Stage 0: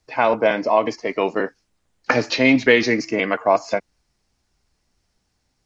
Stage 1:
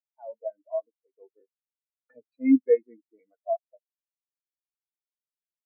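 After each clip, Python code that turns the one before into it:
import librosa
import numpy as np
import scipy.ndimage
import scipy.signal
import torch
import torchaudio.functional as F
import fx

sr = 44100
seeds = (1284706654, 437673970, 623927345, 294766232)

y = fx.spectral_expand(x, sr, expansion=4.0)
y = y * librosa.db_to_amplitude(-8.5)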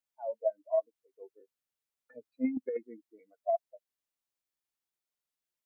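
y = fx.over_compress(x, sr, threshold_db=-27.0, ratio=-1.0)
y = y * librosa.db_to_amplitude(-2.0)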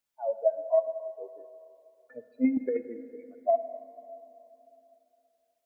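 y = fx.rev_plate(x, sr, seeds[0], rt60_s=3.1, hf_ratio=0.6, predelay_ms=0, drr_db=11.0)
y = y * librosa.db_to_amplitude(5.5)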